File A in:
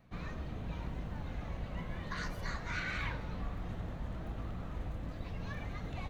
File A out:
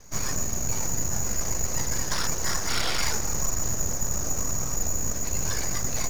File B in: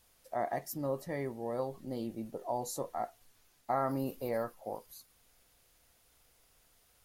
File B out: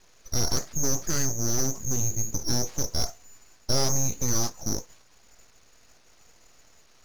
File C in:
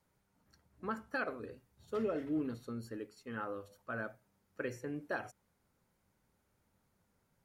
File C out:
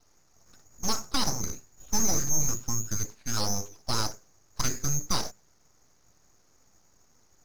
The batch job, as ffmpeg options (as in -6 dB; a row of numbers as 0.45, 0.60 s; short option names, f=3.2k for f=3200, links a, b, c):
-filter_complex "[0:a]asplit=2[a][b];[b]alimiter=level_in=6.5dB:limit=-24dB:level=0:latency=1:release=28,volume=-6.5dB,volume=0.5dB[c];[a][c]amix=inputs=2:normalize=0,aeval=exprs='0.133*(cos(1*acos(clip(val(0)/0.133,-1,1)))-cos(1*PI/2))+0.0133*(cos(5*acos(clip(val(0)/0.133,-1,1)))-cos(5*PI/2))+0.00668*(cos(8*acos(clip(val(0)/0.133,-1,1)))-cos(8*PI/2))':c=same,lowpass=f=3k:t=q:w=0.5098,lowpass=f=3k:t=q:w=0.6013,lowpass=f=3k:t=q:w=0.9,lowpass=f=3k:t=q:w=2.563,afreqshift=-3500,aeval=exprs='abs(val(0))':c=same,volume=6dB"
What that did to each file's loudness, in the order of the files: +14.0, +10.0, +11.5 LU